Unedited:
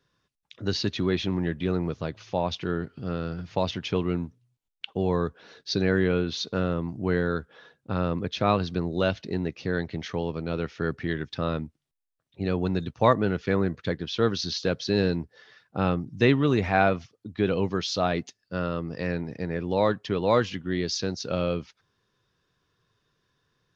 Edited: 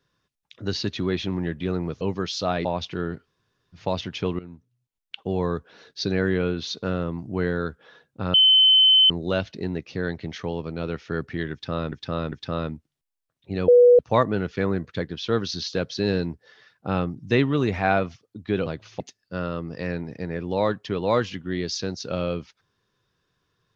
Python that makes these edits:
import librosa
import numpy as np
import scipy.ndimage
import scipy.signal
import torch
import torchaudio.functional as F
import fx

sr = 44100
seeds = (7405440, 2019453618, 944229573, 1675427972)

y = fx.edit(x, sr, fx.swap(start_s=2.01, length_s=0.34, other_s=17.56, other_length_s=0.64),
    fx.room_tone_fill(start_s=2.94, length_s=0.51, crossfade_s=0.06),
    fx.fade_in_from(start_s=4.09, length_s=0.81, floor_db=-17.0),
    fx.bleep(start_s=8.04, length_s=0.76, hz=3060.0, db=-12.0),
    fx.repeat(start_s=11.22, length_s=0.4, count=3),
    fx.bleep(start_s=12.58, length_s=0.31, hz=488.0, db=-9.5), tone=tone)